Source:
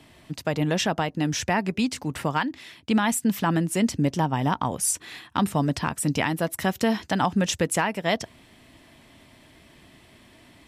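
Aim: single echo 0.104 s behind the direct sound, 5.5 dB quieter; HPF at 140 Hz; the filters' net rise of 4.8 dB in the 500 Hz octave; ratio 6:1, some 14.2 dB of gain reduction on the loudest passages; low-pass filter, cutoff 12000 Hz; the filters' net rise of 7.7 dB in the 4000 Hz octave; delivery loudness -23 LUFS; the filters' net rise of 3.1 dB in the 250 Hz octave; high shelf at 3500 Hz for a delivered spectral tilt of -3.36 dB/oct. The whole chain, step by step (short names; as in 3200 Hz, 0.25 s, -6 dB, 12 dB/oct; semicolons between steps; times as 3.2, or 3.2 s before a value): HPF 140 Hz; LPF 12000 Hz; bell 250 Hz +3.5 dB; bell 500 Hz +5 dB; high shelf 3500 Hz +8.5 dB; bell 4000 Hz +4.5 dB; compressor 6:1, threshold -30 dBFS; echo 0.104 s -5.5 dB; gain +9.5 dB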